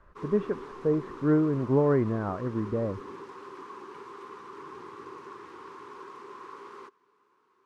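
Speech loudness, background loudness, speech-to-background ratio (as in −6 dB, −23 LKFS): −28.0 LKFS, −44.0 LKFS, 16.0 dB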